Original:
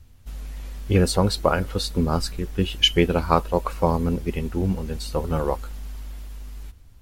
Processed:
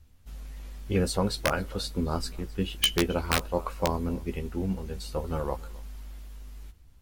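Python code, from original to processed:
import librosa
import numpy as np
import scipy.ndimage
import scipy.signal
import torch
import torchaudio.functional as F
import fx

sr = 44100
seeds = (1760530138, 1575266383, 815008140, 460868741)

y = fx.hum_notches(x, sr, base_hz=60, count=2)
y = y + 10.0 ** (-22.5 / 20.0) * np.pad(y, (int(265 * sr / 1000.0), 0))[:len(y)]
y = (np.mod(10.0 ** (6.0 / 20.0) * y + 1.0, 2.0) - 1.0) / 10.0 ** (6.0 / 20.0)
y = fx.doubler(y, sr, ms=15.0, db=-8.5)
y = y * librosa.db_to_amplitude(-7.0)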